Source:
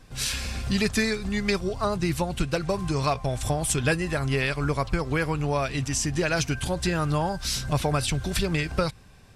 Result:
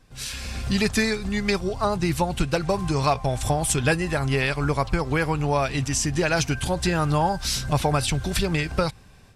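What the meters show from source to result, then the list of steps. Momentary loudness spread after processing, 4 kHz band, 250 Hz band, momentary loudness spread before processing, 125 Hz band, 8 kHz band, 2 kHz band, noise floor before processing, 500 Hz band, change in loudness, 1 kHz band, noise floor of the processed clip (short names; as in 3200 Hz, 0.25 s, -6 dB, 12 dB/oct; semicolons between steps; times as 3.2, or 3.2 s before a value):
3 LU, +1.5 dB, +2.0 dB, 4 LU, +2.0 dB, +2.0 dB, +2.0 dB, -50 dBFS, +2.5 dB, +2.5 dB, +4.5 dB, -49 dBFS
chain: dynamic EQ 830 Hz, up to +5 dB, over -45 dBFS, Q 4.3; AGC gain up to 9 dB; gain -5.5 dB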